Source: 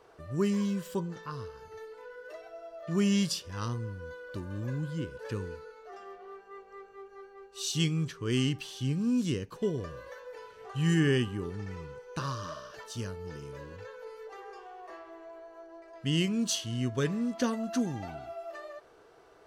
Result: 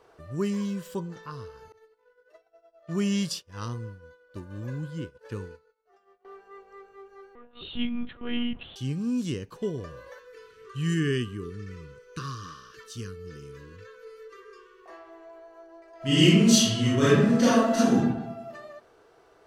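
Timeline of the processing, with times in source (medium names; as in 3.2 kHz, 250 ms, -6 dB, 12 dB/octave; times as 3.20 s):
1.72–6.25 s: expander -36 dBFS
7.35–8.76 s: monotone LPC vocoder at 8 kHz 240 Hz
10.19–14.86 s: Chebyshev band-stop 470–1100 Hz, order 3
15.97–17.96 s: reverb throw, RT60 0.98 s, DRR -11.5 dB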